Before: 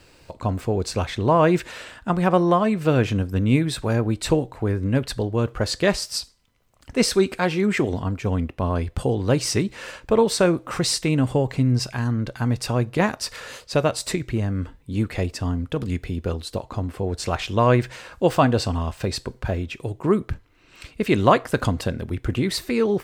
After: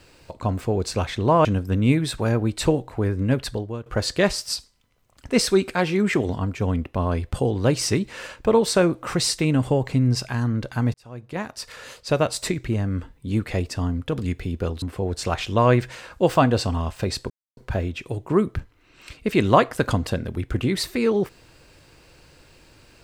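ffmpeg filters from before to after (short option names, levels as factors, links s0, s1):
-filter_complex "[0:a]asplit=6[s0][s1][s2][s3][s4][s5];[s0]atrim=end=1.452[s6];[s1]atrim=start=3.088:end=5.5,asetpts=PTS-STARTPTS,afade=t=out:st=1.982:d=0.43:silence=0.125893[s7];[s2]atrim=start=5.5:end=12.58,asetpts=PTS-STARTPTS,afade=t=in:d=0.004:c=hsin:silence=0.125893,afade=t=out:st=7.076:d=0.004:c=hsin[s8];[s3]atrim=start=12.58:end=16.462,asetpts=PTS-STARTPTS,afade=t=in:d=1.29[s9];[s4]atrim=start=16.828:end=19.31,asetpts=PTS-STARTPTS,afade=t=out:st=2.478:d=0.004:c=hsin,apad=pad_dur=0.27[s10];[s5]atrim=start=19.31,asetpts=PTS-STARTPTS,afade=t=in:d=0.004:c=hsin[s11];[s7][s8][s9]concat=n=3:v=0:a=1[s12];[s6][s12]acrossfade=d=0.004:c1=hsin:c2=hsin[s13];[s10][s11]concat=n=2:v=0:a=1[s14];[s13][s14]acrossfade=d=0.004:c1=hsin:c2=hsin"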